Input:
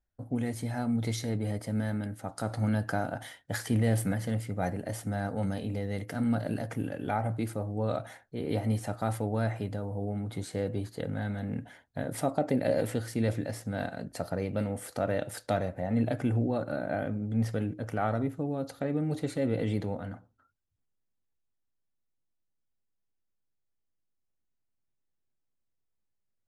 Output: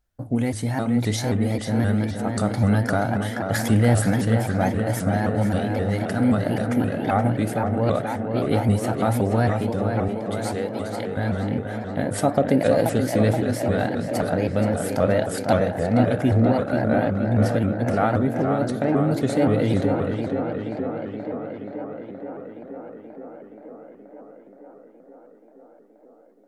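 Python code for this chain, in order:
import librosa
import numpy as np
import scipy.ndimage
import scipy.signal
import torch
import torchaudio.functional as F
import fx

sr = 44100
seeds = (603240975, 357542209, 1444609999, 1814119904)

y = fx.highpass(x, sr, hz=690.0, slope=6, at=(10.08, 11.17))
y = fx.echo_tape(y, sr, ms=476, feedback_pct=83, wet_db=-5.0, lp_hz=3300.0, drive_db=8.0, wow_cents=19)
y = fx.vibrato_shape(y, sr, shape='saw_up', rate_hz=3.8, depth_cents=160.0)
y = F.gain(torch.from_numpy(y), 8.5).numpy()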